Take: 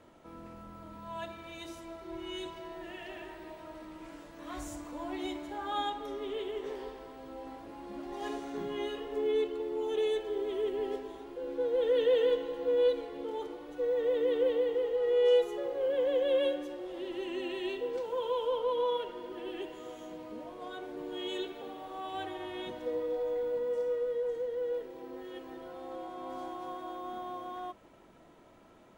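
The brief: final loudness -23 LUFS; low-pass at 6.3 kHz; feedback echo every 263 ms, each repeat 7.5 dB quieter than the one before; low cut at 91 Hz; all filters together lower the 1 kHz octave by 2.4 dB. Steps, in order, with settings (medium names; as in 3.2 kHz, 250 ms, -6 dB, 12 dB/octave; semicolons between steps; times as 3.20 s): high-pass 91 Hz; low-pass 6.3 kHz; peaking EQ 1 kHz -3 dB; feedback delay 263 ms, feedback 42%, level -7.5 dB; trim +10.5 dB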